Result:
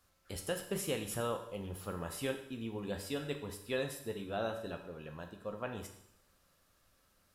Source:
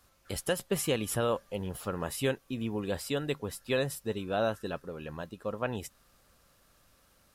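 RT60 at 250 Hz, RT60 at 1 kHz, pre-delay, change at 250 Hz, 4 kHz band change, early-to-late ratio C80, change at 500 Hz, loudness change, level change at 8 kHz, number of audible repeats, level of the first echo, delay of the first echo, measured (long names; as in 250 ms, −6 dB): 0.75 s, 0.75 s, 11 ms, −6.5 dB, −6.0 dB, 11.5 dB, −6.5 dB, −6.5 dB, −6.0 dB, no echo audible, no echo audible, no echo audible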